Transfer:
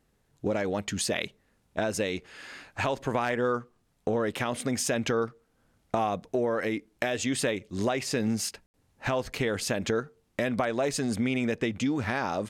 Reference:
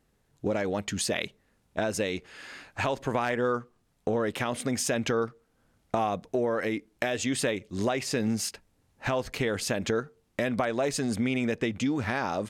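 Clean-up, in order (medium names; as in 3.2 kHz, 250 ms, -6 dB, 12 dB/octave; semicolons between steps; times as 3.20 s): room tone fill 8.66–8.74 s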